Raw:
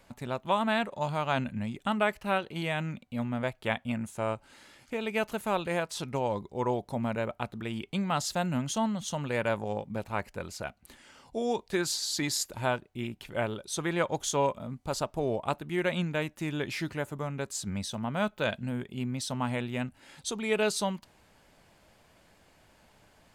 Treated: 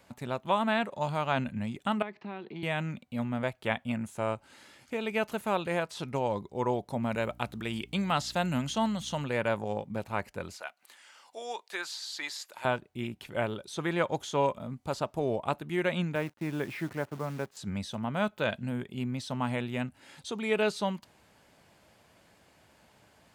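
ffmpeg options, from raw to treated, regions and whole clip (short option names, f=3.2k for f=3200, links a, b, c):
-filter_complex "[0:a]asettb=1/sr,asplit=3[a][b][c];[a]atrim=end=2.024[d];[b]atrim=start=2.02:end=2.63,asetpts=PTS-STARTPTS,afade=t=in:d=0.004:c=qsin,afade=t=out:st=0.606:d=0.004:c=qsin,highpass=f=150:w=0.5412,highpass=f=150:w=1.3066,equalizer=f=200:t=q:w=4:g=4,equalizer=f=370:t=q:w=4:g=7,equalizer=f=550:t=q:w=4:g=-8,equalizer=f=1.4k:t=q:w=4:g=-7,equalizer=f=3k:t=q:w=4:g=-8,lowpass=f=4.1k:w=0.5412,lowpass=f=4.1k:w=1.3066,acompressor=threshold=-38dB:ratio=3:attack=3.2:release=140:knee=1:detection=peak[e];[c]atrim=start=2.626[f];[d][e]acrossfade=d=0.004:c1=hsin:c2=qsin[g];[g][f]acrossfade=d=0.004:c1=qsin:c2=hsin,asettb=1/sr,asplit=3[h][i][j];[h]atrim=end=7.114[k];[i]atrim=start=7.11:end=9.24,asetpts=PTS-STARTPTS,afade=t=in:d=0.004:c=qsin,afade=t=out:st=2.126:d=0.004:c=qsin,highshelf=f=2.9k:g=9.5,aeval=exprs='val(0)+0.00282*(sin(2*PI*60*n/s)+sin(2*PI*2*60*n/s)/2+sin(2*PI*3*60*n/s)/3+sin(2*PI*4*60*n/s)/4+sin(2*PI*5*60*n/s)/5)':c=same[l];[j]atrim=start=9.236[m];[k][l]acrossfade=d=0.004:c1=hsin:c2=qsin[n];[n][m]acrossfade=d=0.004:c1=qsin:c2=hsin,asettb=1/sr,asplit=3[o][p][q];[o]atrim=end=10.564[r];[p]atrim=start=10.56:end=12.65,asetpts=PTS-STARTPTS,afade=t=in:d=0.004:c=qsin,afade=t=out:st=2.086:d=0.004:c=qsin,highpass=830,acompressor=mode=upward:threshold=-52dB:ratio=2.5:attack=3.2:release=140:knee=2.83:detection=peak[s];[q]atrim=start=12.646[t];[r][s]acrossfade=d=0.004:c1=hsin:c2=qsin[u];[u][t]acrossfade=d=0.004:c1=qsin:c2=hsin,asettb=1/sr,asplit=3[v][w][x];[v]atrim=end=16.154[y];[w]atrim=start=16.15:end=17.57,asetpts=PTS-STARTPTS,afade=t=in:d=0.004:c=qsin,afade=t=out:st=1.416:d=0.004:c=qsin,agate=range=-6dB:threshold=-48dB:ratio=16:release=100:detection=peak,highpass=100,lowpass=2.1k,acrusher=bits=9:dc=4:mix=0:aa=0.000001[z];[x]atrim=start=17.566[aa];[y][z]acrossfade=d=0.004:c1=hsin:c2=qsin[ab];[ab][aa]acrossfade=d=0.004:c1=qsin:c2=hsin,acrossover=split=3900[ac][ad];[ad]acompressor=threshold=-46dB:ratio=4:attack=1:release=60[ae];[ac][ae]amix=inputs=2:normalize=0,highpass=69"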